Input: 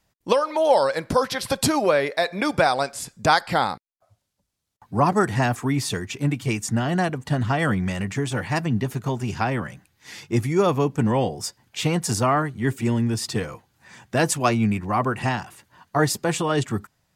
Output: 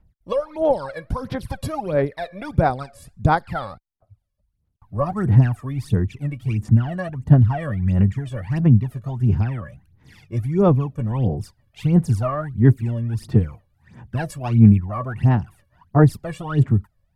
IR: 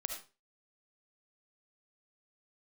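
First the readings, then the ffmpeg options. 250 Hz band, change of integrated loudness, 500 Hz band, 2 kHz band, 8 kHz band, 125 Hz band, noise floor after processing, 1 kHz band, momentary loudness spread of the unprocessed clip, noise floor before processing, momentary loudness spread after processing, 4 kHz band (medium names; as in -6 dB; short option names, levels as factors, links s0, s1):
+3.0 dB, +2.5 dB, -2.0 dB, -7.5 dB, under -15 dB, +8.5 dB, -69 dBFS, -4.0 dB, 8 LU, -75 dBFS, 14 LU, under -10 dB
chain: -af "aexciter=amount=3.2:drive=8.1:freq=9400,aphaser=in_gain=1:out_gain=1:delay=1.8:decay=0.77:speed=1.5:type=sinusoidal,aemphasis=mode=reproduction:type=riaa,volume=0.282"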